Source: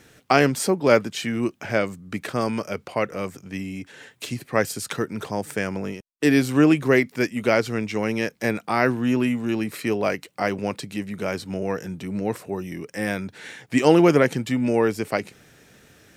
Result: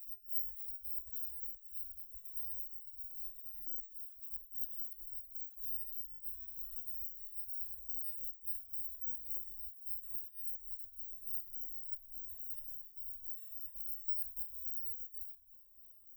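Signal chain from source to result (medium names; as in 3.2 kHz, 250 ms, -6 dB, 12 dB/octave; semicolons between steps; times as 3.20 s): bit-reversed sample order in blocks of 256 samples; inverse Chebyshev band-stop 160–9700 Hz, stop band 50 dB; dynamic bell 9.8 kHz, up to +5 dB, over -43 dBFS, Q 1; reverse; compression 4:1, threshold -40 dBFS, peak gain reduction 20.5 dB; reverse; reverse echo 606 ms -6 dB; resonator arpeggio 7.1 Hz 130–620 Hz; trim +12 dB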